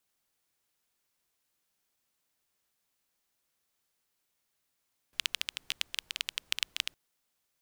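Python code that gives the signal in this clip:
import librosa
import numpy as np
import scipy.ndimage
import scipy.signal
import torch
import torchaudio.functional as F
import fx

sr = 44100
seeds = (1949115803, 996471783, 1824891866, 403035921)

y = fx.rain(sr, seeds[0], length_s=1.81, drops_per_s=12.0, hz=3000.0, bed_db=-29)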